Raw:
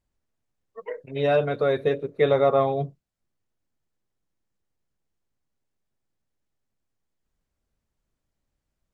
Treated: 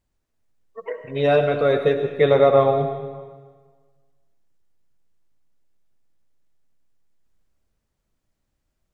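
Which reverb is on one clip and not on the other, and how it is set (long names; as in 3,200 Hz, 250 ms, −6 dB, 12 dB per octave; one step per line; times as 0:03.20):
comb and all-pass reverb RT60 1.5 s, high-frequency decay 0.85×, pre-delay 45 ms, DRR 7 dB
level +3.5 dB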